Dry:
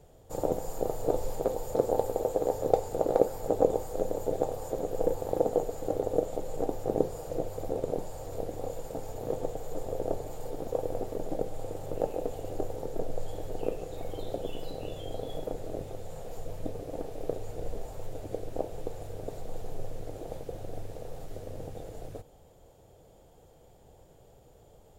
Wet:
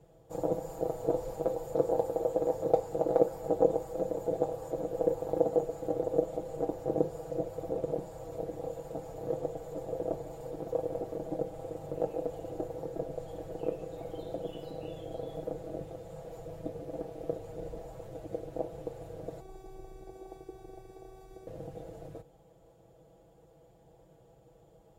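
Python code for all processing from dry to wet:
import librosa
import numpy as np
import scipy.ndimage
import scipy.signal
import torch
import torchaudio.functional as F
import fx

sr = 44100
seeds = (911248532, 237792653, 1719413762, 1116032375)

y = fx.chain(x, sr, fx.notch(hz=2900.0, q=9.5),
    fx.robotise(hz=380.0), at=(19.4, 21.47))
y = scipy.signal.sosfilt(scipy.signal.butter(2, 45.0, 'highpass', fs=sr, output='sos'), y)
y = fx.high_shelf(y, sr, hz=2400.0, db=-8.0)
y = y + 0.74 * np.pad(y, (int(6.1 * sr / 1000.0), 0))[:len(y)]
y = y * librosa.db_to_amplitude(-3.5)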